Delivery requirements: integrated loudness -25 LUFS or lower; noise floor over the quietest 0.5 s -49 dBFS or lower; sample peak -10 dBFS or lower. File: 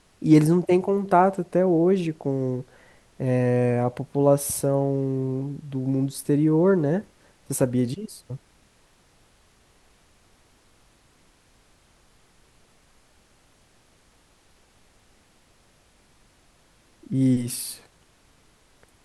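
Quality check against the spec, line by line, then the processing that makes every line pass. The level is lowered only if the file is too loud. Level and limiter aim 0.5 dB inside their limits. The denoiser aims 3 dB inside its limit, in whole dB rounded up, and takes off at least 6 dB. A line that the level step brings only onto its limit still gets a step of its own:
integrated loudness -23.0 LUFS: fail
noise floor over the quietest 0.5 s -60 dBFS: pass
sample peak -5.5 dBFS: fail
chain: trim -2.5 dB; peak limiter -10.5 dBFS

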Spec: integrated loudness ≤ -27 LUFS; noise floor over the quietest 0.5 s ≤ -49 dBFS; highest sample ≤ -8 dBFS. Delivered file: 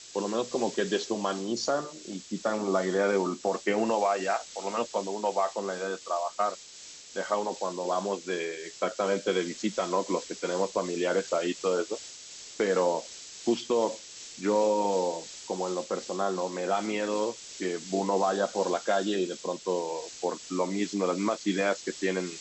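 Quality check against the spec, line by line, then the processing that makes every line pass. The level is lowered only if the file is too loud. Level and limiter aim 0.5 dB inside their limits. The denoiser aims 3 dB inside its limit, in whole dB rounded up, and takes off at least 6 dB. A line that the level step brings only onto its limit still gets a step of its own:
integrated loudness -29.5 LUFS: pass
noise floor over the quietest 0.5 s -47 dBFS: fail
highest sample -14.5 dBFS: pass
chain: noise reduction 6 dB, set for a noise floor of -47 dBFS

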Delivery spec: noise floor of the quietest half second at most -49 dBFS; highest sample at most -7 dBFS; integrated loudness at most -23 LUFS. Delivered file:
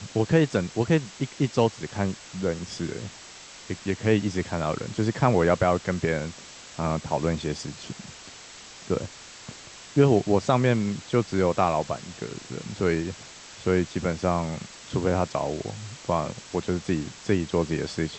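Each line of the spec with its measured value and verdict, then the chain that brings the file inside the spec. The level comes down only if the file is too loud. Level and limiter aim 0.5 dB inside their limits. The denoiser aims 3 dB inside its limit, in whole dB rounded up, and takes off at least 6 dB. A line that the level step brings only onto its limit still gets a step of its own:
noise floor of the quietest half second -45 dBFS: fail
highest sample -5.5 dBFS: fail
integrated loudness -26.5 LUFS: pass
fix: noise reduction 7 dB, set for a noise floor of -45 dBFS; peak limiter -7.5 dBFS

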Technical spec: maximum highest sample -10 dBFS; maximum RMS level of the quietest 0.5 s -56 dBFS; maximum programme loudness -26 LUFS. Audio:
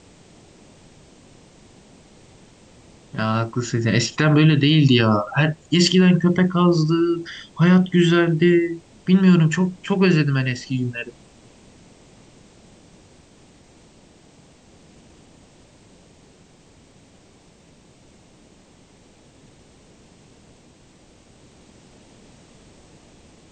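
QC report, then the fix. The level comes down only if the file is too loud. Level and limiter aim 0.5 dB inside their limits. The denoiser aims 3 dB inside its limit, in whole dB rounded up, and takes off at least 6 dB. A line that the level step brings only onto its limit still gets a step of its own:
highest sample -5.5 dBFS: fail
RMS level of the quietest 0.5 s -52 dBFS: fail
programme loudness -18.0 LUFS: fail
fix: trim -8.5 dB

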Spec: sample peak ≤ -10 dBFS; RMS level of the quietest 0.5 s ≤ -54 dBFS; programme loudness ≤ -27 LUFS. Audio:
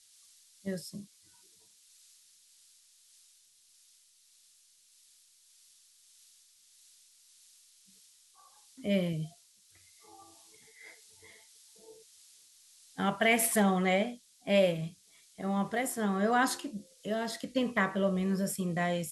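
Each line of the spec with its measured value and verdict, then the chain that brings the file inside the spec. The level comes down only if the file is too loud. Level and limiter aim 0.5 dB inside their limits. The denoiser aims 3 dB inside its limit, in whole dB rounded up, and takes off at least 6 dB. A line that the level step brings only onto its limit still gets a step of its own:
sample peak -14.0 dBFS: pass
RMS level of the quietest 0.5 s -64 dBFS: pass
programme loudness -31.0 LUFS: pass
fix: none needed

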